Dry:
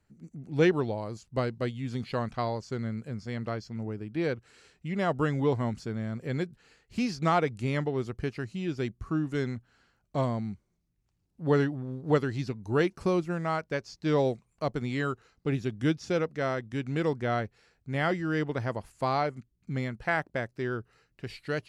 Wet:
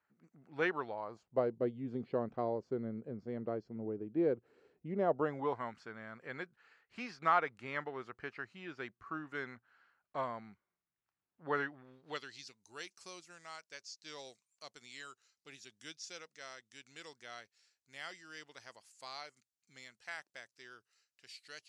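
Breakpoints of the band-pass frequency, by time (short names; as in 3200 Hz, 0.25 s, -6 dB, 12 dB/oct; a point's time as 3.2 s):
band-pass, Q 1.4
0.93 s 1300 Hz
1.57 s 410 Hz
4.97 s 410 Hz
5.63 s 1400 Hz
11.6 s 1400 Hz
12.51 s 6500 Hz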